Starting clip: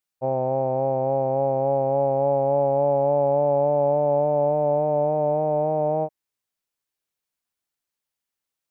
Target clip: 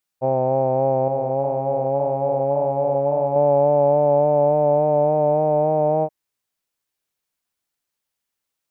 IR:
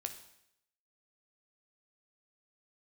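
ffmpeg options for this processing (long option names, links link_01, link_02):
-filter_complex "[0:a]asettb=1/sr,asplit=3[link_01][link_02][link_03];[link_01]atrim=end=1.084[link_04];[link_02]atrim=start=1.08:end=3.36,asetpts=PTS-STARTPTS,afade=type=in:duration=0.004:curve=qsin,afade=type=out:start_time=2.276:duration=0.004:curve=qsin,flanger=delay=0.9:depth=6.9:regen=-46:speed=1.8:shape=sinusoidal[link_05];[link_03]atrim=start=3.356[link_06];[link_04][link_05]acrossfade=duration=0.004:curve1=hsin:curve2=qsin[link_07];[link_07][link_06]acrossfade=duration=0.004:curve1=qsin:curve2=hsin,volume=4dB"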